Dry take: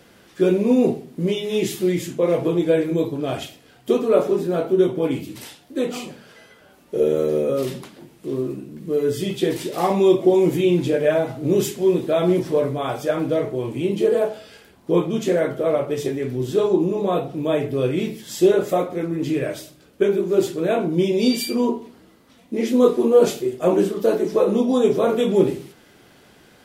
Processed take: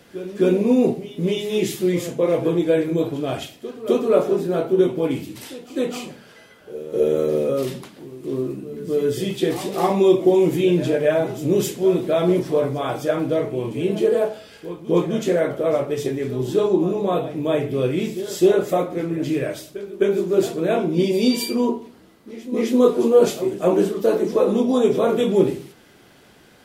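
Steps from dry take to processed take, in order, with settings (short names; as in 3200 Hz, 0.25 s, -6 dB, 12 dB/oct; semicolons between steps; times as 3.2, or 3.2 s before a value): pre-echo 0.259 s -14 dB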